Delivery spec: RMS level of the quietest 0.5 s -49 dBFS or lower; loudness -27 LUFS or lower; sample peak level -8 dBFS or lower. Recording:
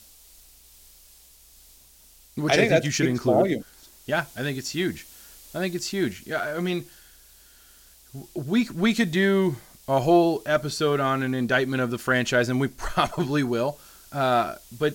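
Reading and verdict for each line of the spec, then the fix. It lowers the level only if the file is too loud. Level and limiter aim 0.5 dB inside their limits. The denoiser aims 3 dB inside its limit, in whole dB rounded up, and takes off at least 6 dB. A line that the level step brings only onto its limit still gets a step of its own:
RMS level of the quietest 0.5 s -53 dBFS: pass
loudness -24.0 LUFS: fail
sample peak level -6.0 dBFS: fail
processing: trim -3.5 dB

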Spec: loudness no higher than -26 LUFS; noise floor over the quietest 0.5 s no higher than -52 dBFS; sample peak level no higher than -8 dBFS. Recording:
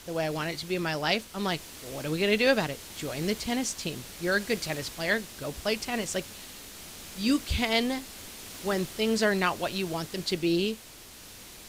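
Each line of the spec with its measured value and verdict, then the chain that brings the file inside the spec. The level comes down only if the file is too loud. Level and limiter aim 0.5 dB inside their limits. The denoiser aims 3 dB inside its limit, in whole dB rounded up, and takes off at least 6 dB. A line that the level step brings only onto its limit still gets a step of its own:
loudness -29.0 LUFS: pass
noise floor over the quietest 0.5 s -48 dBFS: fail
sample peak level -11.0 dBFS: pass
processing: noise reduction 7 dB, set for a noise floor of -48 dBFS

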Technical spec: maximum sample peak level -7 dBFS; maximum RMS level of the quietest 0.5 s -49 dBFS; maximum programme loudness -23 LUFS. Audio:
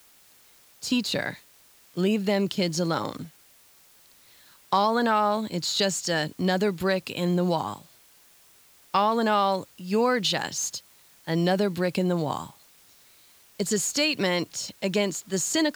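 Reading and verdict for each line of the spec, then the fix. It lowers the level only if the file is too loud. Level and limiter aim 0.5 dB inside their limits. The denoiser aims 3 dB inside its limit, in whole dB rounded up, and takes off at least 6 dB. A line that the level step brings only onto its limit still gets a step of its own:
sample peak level -10.0 dBFS: pass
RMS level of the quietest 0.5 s -57 dBFS: pass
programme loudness -26.0 LUFS: pass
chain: none needed

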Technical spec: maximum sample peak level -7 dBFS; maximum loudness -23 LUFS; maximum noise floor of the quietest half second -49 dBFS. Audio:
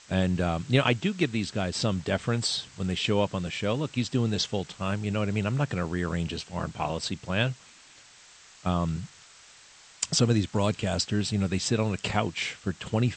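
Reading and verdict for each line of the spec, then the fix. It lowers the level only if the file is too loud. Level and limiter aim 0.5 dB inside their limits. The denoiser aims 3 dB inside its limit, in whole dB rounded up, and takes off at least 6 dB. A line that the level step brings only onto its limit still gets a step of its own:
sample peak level -8.5 dBFS: pass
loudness -28.0 LUFS: pass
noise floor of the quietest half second -53 dBFS: pass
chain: none needed

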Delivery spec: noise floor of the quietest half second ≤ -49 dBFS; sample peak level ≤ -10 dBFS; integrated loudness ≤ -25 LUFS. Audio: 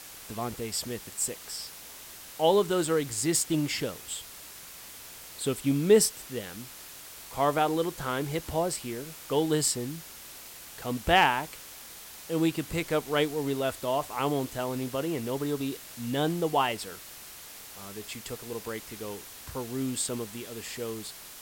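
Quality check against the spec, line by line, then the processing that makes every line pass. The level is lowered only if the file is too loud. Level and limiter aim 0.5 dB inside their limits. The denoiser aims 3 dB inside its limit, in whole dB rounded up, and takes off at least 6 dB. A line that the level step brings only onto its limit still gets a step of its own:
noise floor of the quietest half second -46 dBFS: fail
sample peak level -9.0 dBFS: fail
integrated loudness -29.5 LUFS: pass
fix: noise reduction 6 dB, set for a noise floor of -46 dBFS; peak limiter -10.5 dBFS

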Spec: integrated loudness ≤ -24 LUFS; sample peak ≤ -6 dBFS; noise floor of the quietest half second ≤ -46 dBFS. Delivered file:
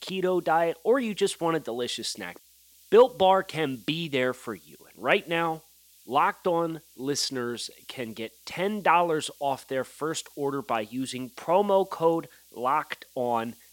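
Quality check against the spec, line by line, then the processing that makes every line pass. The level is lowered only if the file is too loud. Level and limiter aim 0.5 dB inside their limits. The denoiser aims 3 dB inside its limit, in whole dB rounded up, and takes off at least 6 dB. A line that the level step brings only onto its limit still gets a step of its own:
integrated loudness -27.0 LUFS: pass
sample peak -7.0 dBFS: pass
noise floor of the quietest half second -57 dBFS: pass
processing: none needed

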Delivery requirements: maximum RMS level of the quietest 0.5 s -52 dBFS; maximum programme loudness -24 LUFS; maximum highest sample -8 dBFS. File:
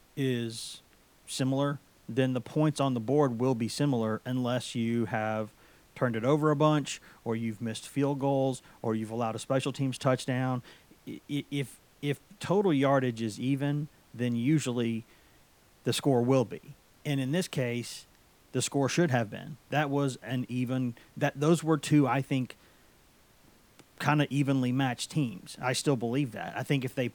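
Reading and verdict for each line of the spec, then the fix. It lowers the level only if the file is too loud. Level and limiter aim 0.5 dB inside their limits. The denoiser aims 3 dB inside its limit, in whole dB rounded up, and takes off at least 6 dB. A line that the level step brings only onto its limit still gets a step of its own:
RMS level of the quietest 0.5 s -61 dBFS: pass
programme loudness -30.0 LUFS: pass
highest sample -11.0 dBFS: pass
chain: none needed

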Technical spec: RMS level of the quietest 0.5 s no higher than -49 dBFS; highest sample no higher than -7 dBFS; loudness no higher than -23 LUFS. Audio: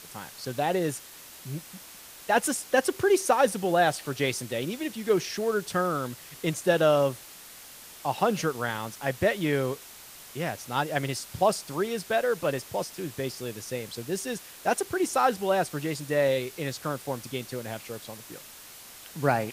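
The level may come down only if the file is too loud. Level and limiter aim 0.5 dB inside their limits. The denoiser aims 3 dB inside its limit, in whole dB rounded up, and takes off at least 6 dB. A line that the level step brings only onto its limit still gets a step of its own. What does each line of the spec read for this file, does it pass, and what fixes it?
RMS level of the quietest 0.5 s -47 dBFS: fail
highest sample -9.0 dBFS: pass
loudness -28.0 LUFS: pass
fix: noise reduction 6 dB, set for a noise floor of -47 dBFS

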